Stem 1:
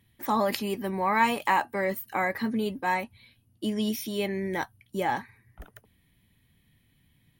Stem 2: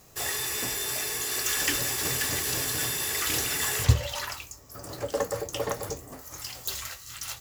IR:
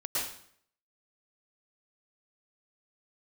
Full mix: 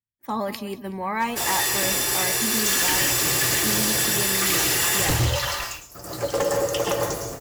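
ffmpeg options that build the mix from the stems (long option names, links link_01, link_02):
-filter_complex "[0:a]lowshelf=frequency=150:gain=5.5,volume=-2.5dB,asplit=2[link_01][link_02];[link_02]volume=-15.5dB[link_03];[1:a]aecho=1:1:5.8:0.38,adelay=1200,volume=2dB,asplit=3[link_04][link_05][link_06];[link_05]volume=-4dB[link_07];[link_06]volume=-13dB[link_08];[2:a]atrim=start_sample=2205[link_09];[link_07][link_09]afir=irnorm=-1:irlink=0[link_10];[link_03][link_08]amix=inputs=2:normalize=0,aecho=0:1:187|374|561|748:1|0.3|0.09|0.027[link_11];[link_01][link_04][link_10][link_11]amix=inputs=4:normalize=0,agate=range=-33dB:threshold=-32dB:ratio=3:detection=peak,aeval=exprs='0.178*(abs(mod(val(0)/0.178+3,4)-2)-1)':channel_layout=same"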